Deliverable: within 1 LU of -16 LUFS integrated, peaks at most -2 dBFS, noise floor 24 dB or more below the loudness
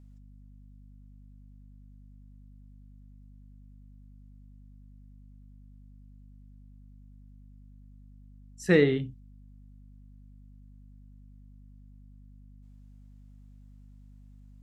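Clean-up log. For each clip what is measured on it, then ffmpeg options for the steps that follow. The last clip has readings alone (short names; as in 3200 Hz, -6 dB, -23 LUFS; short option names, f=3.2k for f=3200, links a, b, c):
hum 50 Hz; harmonics up to 250 Hz; hum level -49 dBFS; loudness -25.5 LUFS; peak -9.0 dBFS; loudness target -16.0 LUFS
-> -af "bandreject=f=50:t=h:w=6,bandreject=f=100:t=h:w=6,bandreject=f=150:t=h:w=6,bandreject=f=200:t=h:w=6,bandreject=f=250:t=h:w=6"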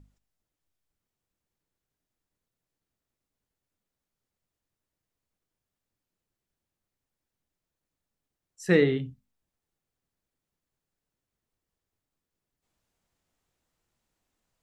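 hum none; loudness -24.5 LUFS; peak -9.0 dBFS; loudness target -16.0 LUFS
-> -af "volume=8.5dB,alimiter=limit=-2dB:level=0:latency=1"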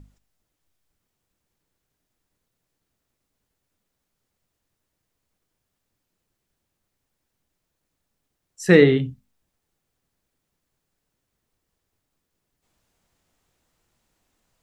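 loudness -16.5 LUFS; peak -2.0 dBFS; noise floor -80 dBFS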